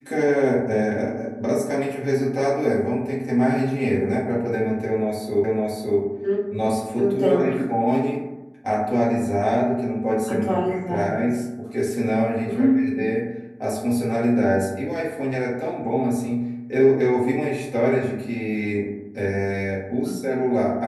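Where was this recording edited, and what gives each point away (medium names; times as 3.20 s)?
5.44 s: repeat of the last 0.56 s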